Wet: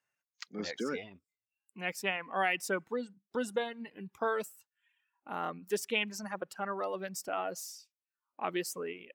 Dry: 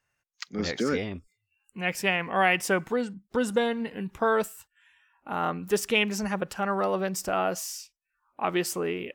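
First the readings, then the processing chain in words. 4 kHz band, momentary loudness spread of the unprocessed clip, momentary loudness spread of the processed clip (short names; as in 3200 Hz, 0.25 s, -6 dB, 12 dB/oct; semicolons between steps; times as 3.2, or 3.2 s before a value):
-7.5 dB, 12 LU, 13 LU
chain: reverb removal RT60 1.7 s; HPF 180 Hz 12 dB/oct; gain -7 dB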